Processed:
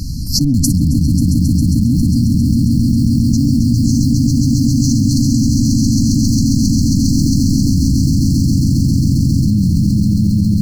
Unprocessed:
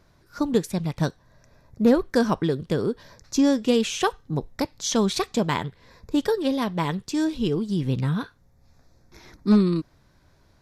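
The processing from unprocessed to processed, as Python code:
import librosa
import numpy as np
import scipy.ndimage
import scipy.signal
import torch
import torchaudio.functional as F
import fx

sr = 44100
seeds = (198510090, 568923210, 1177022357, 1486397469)

p1 = fx.octave_divider(x, sr, octaves=1, level_db=-1.0)
p2 = fx.schmitt(p1, sr, flips_db=-17.0)
p3 = p1 + (p2 * 10.0 ** (-3.5 / 20.0))
p4 = fx.brickwall_bandstop(p3, sr, low_hz=300.0, high_hz=4100.0)
p5 = fx.echo_swell(p4, sr, ms=135, loudest=8, wet_db=-4)
p6 = fx.env_flatten(p5, sr, amount_pct=100)
y = p6 * 10.0 ** (-3.0 / 20.0)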